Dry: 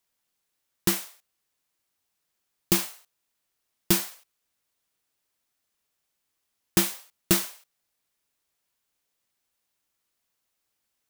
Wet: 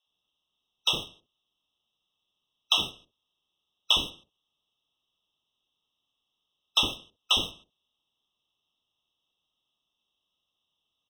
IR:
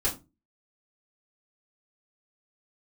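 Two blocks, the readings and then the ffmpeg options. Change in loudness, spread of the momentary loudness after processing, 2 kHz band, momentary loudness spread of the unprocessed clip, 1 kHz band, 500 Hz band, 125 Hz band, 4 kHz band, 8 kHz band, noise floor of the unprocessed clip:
-1.0 dB, 12 LU, -1.0 dB, 14 LU, +2.0 dB, -8.0 dB, -12.0 dB, +9.5 dB, -10.5 dB, -80 dBFS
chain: -filter_complex "[0:a]afftfilt=real='real(if(lt(b,272),68*(eq(floor(b/68),0)*1+eq(floor(b/68),1)*2+eq(floor(b/68),2)*3+eq(floor(b/68),3)*0)+mod(b,68),b),0)':imag='imag(if(lt(b,272),68*(eq(floor(b/68),0)*1+eq(floor(b/68),1)*2+eq(floor(b/68),2)*3+eq(floor(b/68),3)*0)+mod(b,68),b),0)':win_size=2048:overlap=0.75,lowpass=f=3.5k:t=q:w=3.4,acrossover=split=560[a][b];[a]adelay=60[c];[c][b]amix=inputs=2:normalize=0,asplit=2[d][e];[e]acrusher=bits=5:mix=0:aa=0.000001,volume=-7.5dB[f];[d][f]amix=inputs=2:normalize=0,afftfilt=real='re*eq(mod(floor(b*sr/1024/1300),2),0)':imag='im*eq(mod(floor(b*sr/1024/1300),2),0)':win_size=1024:overlap=0.75"

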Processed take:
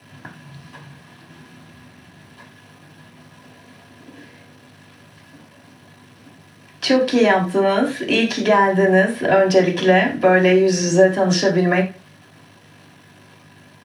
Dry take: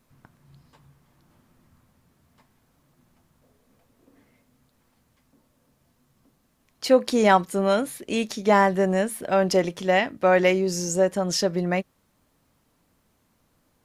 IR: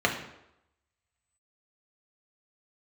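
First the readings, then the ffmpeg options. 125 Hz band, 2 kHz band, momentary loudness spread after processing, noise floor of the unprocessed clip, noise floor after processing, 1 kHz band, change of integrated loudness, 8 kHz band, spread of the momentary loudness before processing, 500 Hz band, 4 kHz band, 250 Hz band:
+7.5 dB, +8.0 dB, 4 LU, -68 dBFS, -49 dBFS, +3.5 dB, +6.0 dB, +2.5 dB, 8 LU, +5.5 dB, +6.5 dB, +7.0 dB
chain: -filter_complex "[0:a]equalizer=f=1.7k:w=6.2:g=12,acrossover=split=430|7900[a][b][c];[a]acompressor=threshold=-33dB:ratio=4[d];[b]acompressor=threshold=-31dB:ratio=4[e];[c]acompressor=threshold=-58dB:ratio=4[f];[d][e][f]amix=inputs=3:normalize=0,asplit=2[g][h];[h]alimiter=limit=-22.5dB:level=0:latency=1,volume=-1dB[i];[g][i]amix=inputs=2:normalize=0,aeval=exprs='val(0)+0.00141*(sin(2*PI*50*n/s)+sin(2*PI*2*50*n/s)/2+sin(2*PI*3*50*n/s)/3+sin(2*PI*4*50*n/s)/4+sin(2*PI*5*50*n/s)/5)':c=same,acrusher=bits=8:mix=0:aa=0.000001,asplit=2[j][k];[k]adelay=169.1,volume=-28dB,highshelf=f=4k:g=-3.8[l];[j][l]amix=inputs=2:normalize=0[m];[1:a]atrim=start_sample=2205,afade=t=out:st=0.2:d=0.01,atrim=end_sample=9261,asetrate=61740,aresample=44100[n];[m][n]afir=irnorm=-1:irlink=0,volume=-1dB"

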